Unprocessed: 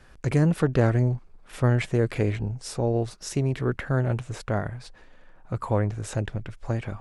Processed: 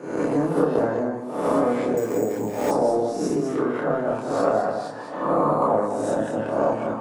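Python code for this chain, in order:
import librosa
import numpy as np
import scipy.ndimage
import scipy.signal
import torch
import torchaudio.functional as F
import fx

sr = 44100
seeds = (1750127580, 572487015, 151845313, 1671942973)

y = fx.spec_swells(x, sr, rise_s=0.84)
y = fx.recorder_agc(y, sr, target_db=-11.5, rise_db_per_s=25.0, max_gain_db=30)
y = scipy.signal.sosfilt(scipy.signal.butter(4, 240.0, 'highpass', fs=sr, output='sos'), y)
y = fx.high_shelf_res(y, sr, hz=1500.0, db=-12.0, q=1.5)
y = fx.transient(y, sr, attack_db=5, sustain_db=1)
y = fx.chorus_voices(y, sr, voices=6, hz=0.81, base_ms=28, depth_ms=1.0, mix_pct=45)
y = y + 10.0 ** (-9.0 / 20.0) * np.pad(y, (int(204 * sr / 1000.0), 0))[:len(y)]
y = fx.rev_fdn(y, sr, rt60_s=0.57, lf_ratio=0.9, hf_ratio=0.7, size_ms=20.0, drr_db=4.5)
y = fx.resample_bad(y, sr, factor=6, down='none', up='hold', at=(1.97, 2.71))
y = fx.band_squash(y, sr, depth_pct=40)
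y = F.gain(torch.from_numpy(y), 1.5).numpy()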